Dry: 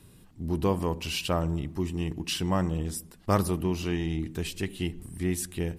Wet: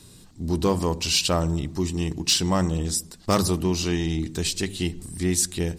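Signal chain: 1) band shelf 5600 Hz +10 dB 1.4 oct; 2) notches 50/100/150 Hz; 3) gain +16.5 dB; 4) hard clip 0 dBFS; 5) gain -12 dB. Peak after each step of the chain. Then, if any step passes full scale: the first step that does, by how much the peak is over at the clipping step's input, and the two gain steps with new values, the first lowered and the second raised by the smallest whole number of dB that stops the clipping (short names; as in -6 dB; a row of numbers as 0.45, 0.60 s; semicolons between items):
-9.5, -10.0, +6.5, 0.0, -12.0 dBFS; step 3, 6.5 dB; step 3 +9.5 dB, step 5 -5 dB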